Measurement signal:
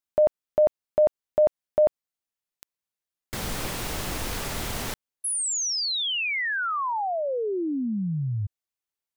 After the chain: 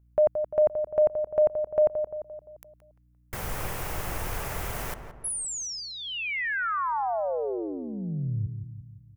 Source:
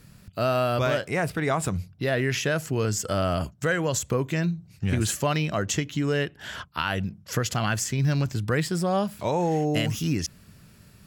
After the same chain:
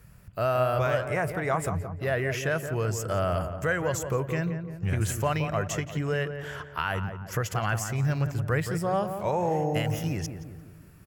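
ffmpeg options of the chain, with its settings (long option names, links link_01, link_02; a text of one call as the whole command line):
ffmpeg -i in.wav -filter_complex "[0:a]aeval=exprs='val(0)+0.00126*(sin(2*PI*60*n/s)+sin(2*PI*2*60*n/s)/2+sin(2*PI*3*60*n/s)/3+sin(2*PI*4*60*n/s)/4+sin(2*PI*5*60*n/s)/5)':channel_layout=same,equalizer=frequency=250:width_type=o:width=1:gain=-10,equalizer=frequency=4000:width_type=o:width=1:gain=-11,equalizer=frequency=8000:width_type=o:width=1:gain=-4,asplit=2[link_01][link_02];[link_02]adelay=173,lowpass=frequency=1400:poles=1,volume=-7.5dB,asplit=2[link_03][link_04];[link_04]adelay=173,lowpass=frequency=1400:poles=1,volume=0.53,asplit=2[link_05][link_06];[link_06]adelay=173,lowpass=frequency=1400:poles=1,volume=0.53,asplit=2[link_07][link_08];[link_08]adelay=173,lowpass=frequency=1400:poles=1,volume=0.53,asplit=2[link_09][link_10];[link_10]adelay=173,lowpass=frequency=1400:poles=1,volume=0.53,asplit=2[link_11][link_12];[link_12]adelay=173,lowpass=frequency=1400:poles=1,volume=0.53[link_13];[link_01][link_03][link_05][link_07][link_09][link_11][link_13]amix=inputs=7:normalize=0" out.wav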